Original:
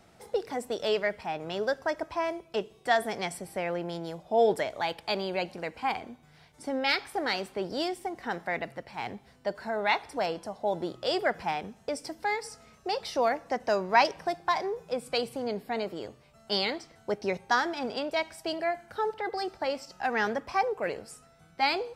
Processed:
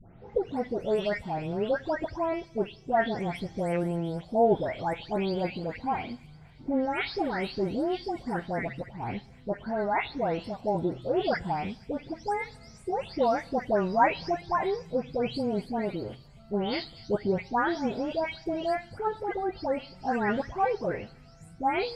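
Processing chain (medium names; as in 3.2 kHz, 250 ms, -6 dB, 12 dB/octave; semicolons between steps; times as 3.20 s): delay that grows with frequency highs late, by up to 349 ms; RIAA curve playback; feedback echo behind a high-pass 238 ms, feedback 52%, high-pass 5.1 kHz, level -8 dB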